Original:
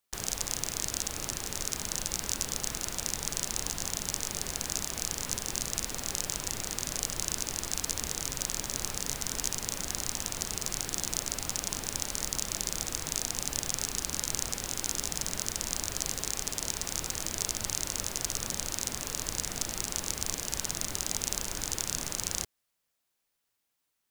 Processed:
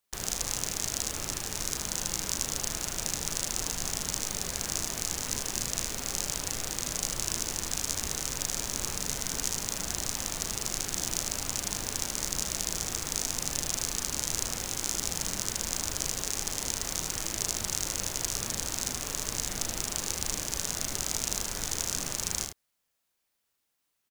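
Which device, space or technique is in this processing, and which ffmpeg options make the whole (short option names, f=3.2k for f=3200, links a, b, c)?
slapback doubling: -filter_complex "[0:a]asplit=3[a][b][c];[b]adelay=36,volume=-8dB[d];[c]adelay=78,volume=-7dB[e];[a][d][e]amix=inputs=3:normalize=0"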